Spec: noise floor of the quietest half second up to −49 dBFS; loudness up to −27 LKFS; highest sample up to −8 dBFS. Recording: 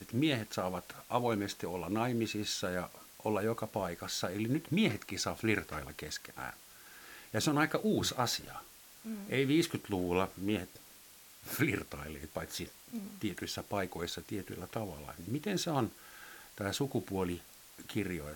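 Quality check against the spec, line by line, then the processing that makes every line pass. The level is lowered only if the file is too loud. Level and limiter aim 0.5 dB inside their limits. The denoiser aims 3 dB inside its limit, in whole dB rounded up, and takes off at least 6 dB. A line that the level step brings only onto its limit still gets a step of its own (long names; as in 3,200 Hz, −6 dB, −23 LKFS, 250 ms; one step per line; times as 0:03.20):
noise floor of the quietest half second −57 dBFS: in spec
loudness −35.5 LKFS: in spec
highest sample −15.5 dBFS: in spec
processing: no processing needed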